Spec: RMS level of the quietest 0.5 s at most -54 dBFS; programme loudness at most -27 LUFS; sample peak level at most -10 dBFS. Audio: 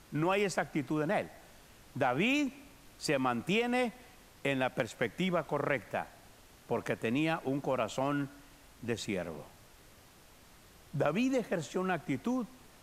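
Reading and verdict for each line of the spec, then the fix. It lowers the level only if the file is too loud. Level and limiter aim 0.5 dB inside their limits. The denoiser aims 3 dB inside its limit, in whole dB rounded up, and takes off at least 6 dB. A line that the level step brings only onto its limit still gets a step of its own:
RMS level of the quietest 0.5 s -58 dBFS: OK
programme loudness -33.5 LUFS: OK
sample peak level -13.5 dBFS: OK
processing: none

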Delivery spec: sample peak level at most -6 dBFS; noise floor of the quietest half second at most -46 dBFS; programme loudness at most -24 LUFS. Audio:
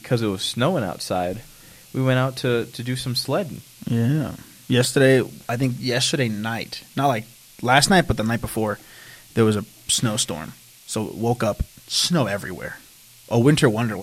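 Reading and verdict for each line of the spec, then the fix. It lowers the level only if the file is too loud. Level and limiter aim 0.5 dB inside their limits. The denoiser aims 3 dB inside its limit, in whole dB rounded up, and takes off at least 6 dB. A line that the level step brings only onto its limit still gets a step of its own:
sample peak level -2.0 dBFS: fail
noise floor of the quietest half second -48 dBFS: OK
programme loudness -21.5 LUFS: fail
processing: gain -3 dB; limiter -6.5 dBFS

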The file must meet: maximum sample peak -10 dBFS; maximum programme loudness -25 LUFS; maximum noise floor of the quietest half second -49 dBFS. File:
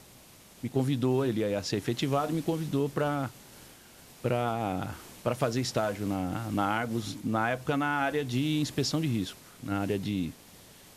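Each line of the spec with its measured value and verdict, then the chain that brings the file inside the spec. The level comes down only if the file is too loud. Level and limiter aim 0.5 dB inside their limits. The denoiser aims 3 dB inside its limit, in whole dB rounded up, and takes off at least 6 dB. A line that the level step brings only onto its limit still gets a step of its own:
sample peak -13.0 dBFS: OK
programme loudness -30.5 LUFS: OK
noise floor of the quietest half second -54 dBFS: OK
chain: none

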